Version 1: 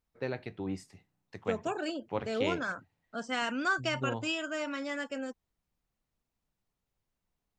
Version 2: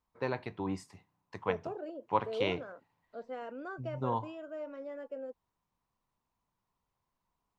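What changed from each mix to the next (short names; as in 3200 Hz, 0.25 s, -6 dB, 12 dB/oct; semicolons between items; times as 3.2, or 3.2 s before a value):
first voice: add bell 1000 Hz +14 dB 0.45 oct; second voice: add band-pass 500 Hz, Q 2.7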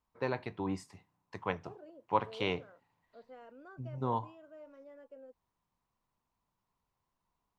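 second voice -11.0 dB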